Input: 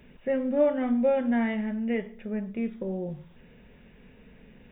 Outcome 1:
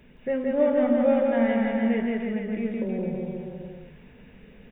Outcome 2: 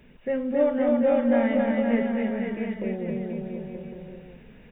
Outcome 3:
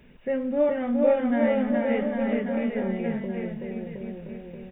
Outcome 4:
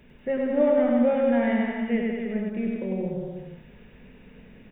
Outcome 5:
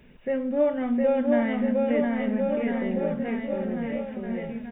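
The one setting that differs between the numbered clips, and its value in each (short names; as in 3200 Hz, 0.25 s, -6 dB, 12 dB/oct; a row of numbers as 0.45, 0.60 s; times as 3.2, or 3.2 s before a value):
bouncing-ball echo, first gap: 0.17, 0.27, 0.42, 0.1, 0.71 s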